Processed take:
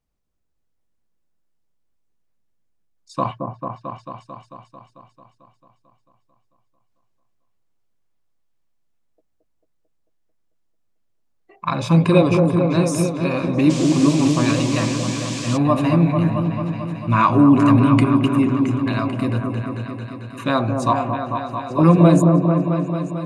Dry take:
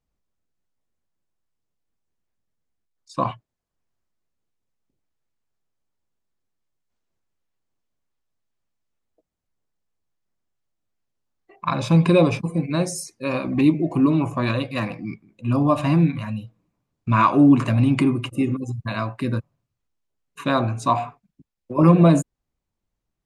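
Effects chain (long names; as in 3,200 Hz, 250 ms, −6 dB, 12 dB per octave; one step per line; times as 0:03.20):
echo whose low-pass opens from repeat to repeat 222 ms, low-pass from 750 Hz, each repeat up 1 octave, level −3 dB
0:13.69–0:15.56: noise in a band 2,100–7,800 Hz −34 dBFS
level +1 dB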